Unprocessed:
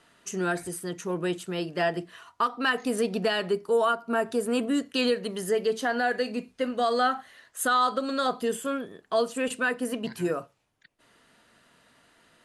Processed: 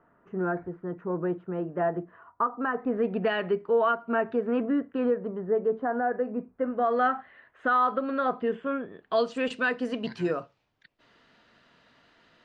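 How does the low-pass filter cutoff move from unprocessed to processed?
low-pass filter 24 dB per octave
0:02.77 1,400 Hz
0:03.28 2,500 Hz
0:04.20 2,500 Hz
0:05.23 1,300 Hz
0:06.52 1,300 Hz
0:07.03 2,300 Hz
0:08.84 2,300 Hz
0:09.28 5,200 Hz

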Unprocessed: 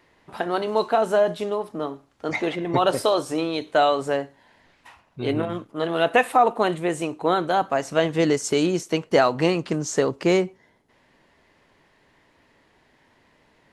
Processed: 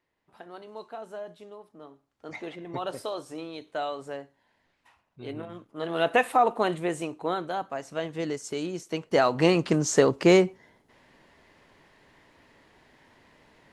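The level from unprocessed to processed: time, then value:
0:01.75 −19.5 dB
0:02.36 −13 dB
0:05.53 −13 dB
0:06.01 −4 dB
0:06.83 −4 dB
0:07.69 −11 dB
0:08.72 −11 dB
0:09.59 +1.5 dB

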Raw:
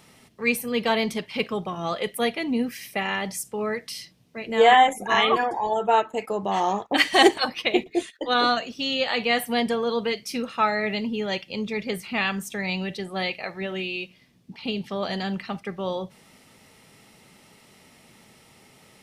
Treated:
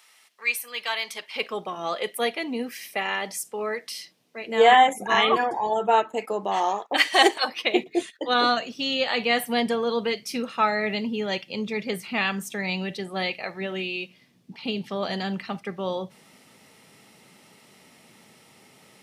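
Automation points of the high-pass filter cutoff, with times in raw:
0:01.02 1,200 Hz
0:01.61 330 Hz
0:04.38 330 Hz
0:04.87 110 Hz
0:05.90 110 Hz
0:06.75 440 Hz
0:07.36 440 Hz
0:07.99 130 Hz

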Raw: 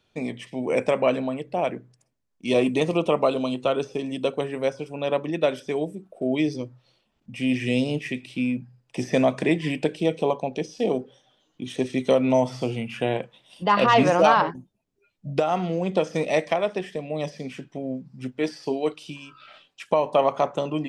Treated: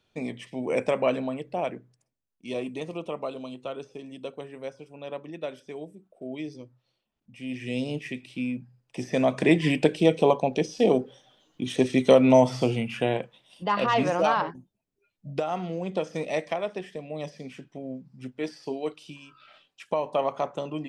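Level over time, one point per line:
0:01.45 −3 dB
0:02.68 −12 dB
0:07.43 −12 dB
0:07.89 −5 dB
0:09.12 −5 dB
0:09.56 +3 dB
0:12.61 +3 dB
0:13.75 −6 dB

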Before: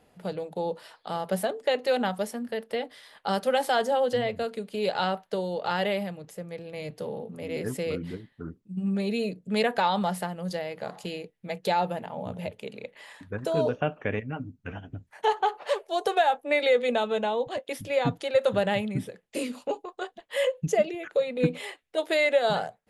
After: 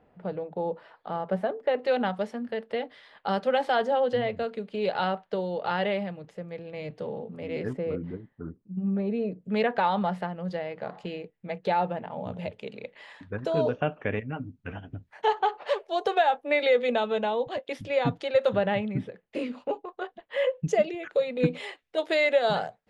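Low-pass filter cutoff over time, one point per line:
1,800 Hz
from 0:01.83 3,200 Hz
from 0:07.73 1,300 Hz
from 0:09.41 2,600 Hz
from 0:12.11 4,500 Hz
from 0:18.56 2,600 Hz
from 0:20.68 5,700 Hz

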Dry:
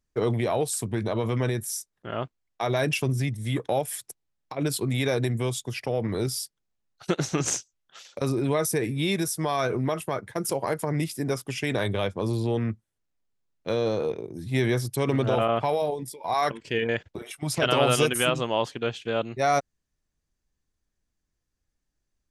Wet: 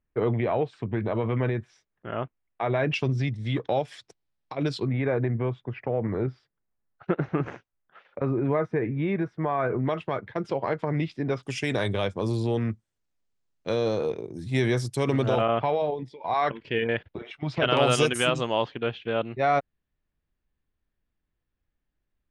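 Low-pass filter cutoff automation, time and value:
low-pass filter 24 dB per octave
2,700 Hz
from 0:02.94 4,800 Hz
from 0:04.87 2,000 Hz
from 0:09.87 3,600 Hz
from 0:11.43 8,700 Hz
from 0:15.41 3,600 Hz
from 0:17.77 8,600 Hz
from 0:18.64 3,400 Hz

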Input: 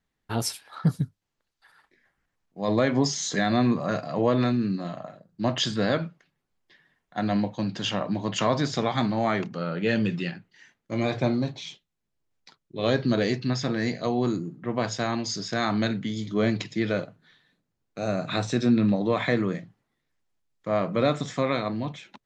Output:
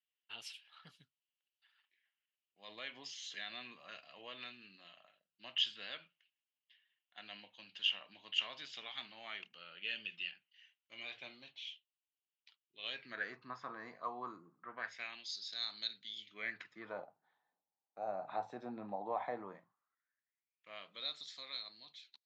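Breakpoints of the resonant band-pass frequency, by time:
resonant band-pass, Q 6.9
0:12.92 2,900 Hz
0:13.41 1,100 Hz
0:14.57 1,100 Hz
0:15.34 4,000 Hz
0:16.04 4,000 Hz
0:17.01 820 Hz
0:19.41 820 Hz
0:21.14 4,200 Hz

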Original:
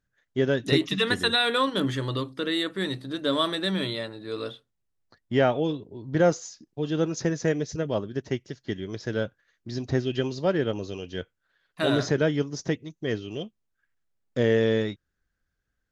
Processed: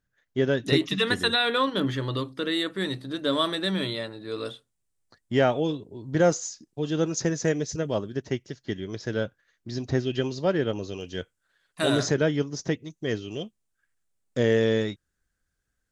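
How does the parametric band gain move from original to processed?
parametric band 8,600 Hz 0.85 octaves
0 dB
from 0:01.34 −8 dB
from 0:02.14 +0.5 dB
from 0:04.45 +11.5 dB
from 0:08.14 +3.5 dB
from 0:11.01 +13 dB
from 0:12.14 +3 dB
from 0:12.84 +10.5 dB

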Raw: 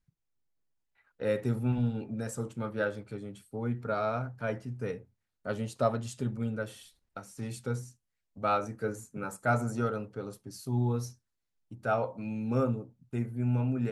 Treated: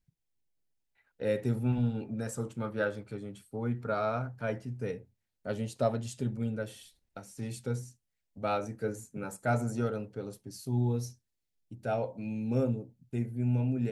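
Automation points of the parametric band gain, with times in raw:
parametric band 1,200 Hz 0.63 octaves
0:01.31 −9 dB
0:01.85 −0.5 dB
0:04.25 −0.5 dB
0:04.85 −8 dB
0:10.46 −8 dB
0:10.99 −14.5 dB

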